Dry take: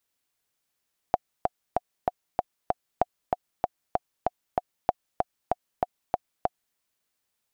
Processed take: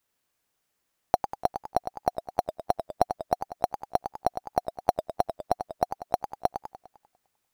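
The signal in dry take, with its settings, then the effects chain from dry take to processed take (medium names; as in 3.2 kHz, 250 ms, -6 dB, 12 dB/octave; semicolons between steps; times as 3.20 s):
metronome 192 bpm, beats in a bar 6, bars 3, 725 Hz, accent 3 dB -7 dBFS
in parallel at -9 dB: sample-and-hold 9×; on the sum: modulated delay 100 ms, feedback 51%, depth 214 cents, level -9 dB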